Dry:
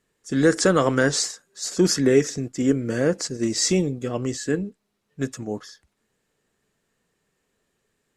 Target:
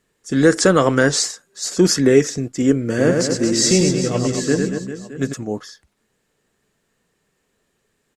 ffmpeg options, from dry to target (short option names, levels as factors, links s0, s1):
-filter_complex "[0:a]asplit=3[s0][s1][s2];[s0]afade=t=out:st=2.98:d=0.02[s3];[s1]aecho=1:1:100|230|399|618.7|904.3:0.631|0.398|0.251|0.158|0.1,afade=t=in:st=2.98:d=0.02,afade=t=out:st=5.32:d=0.02[s4];[s2]afade=t=in:st=5.32:d=0.02[s5];[s3][s4][s5]amix=inputs=3:normalize=0,volume=1.68"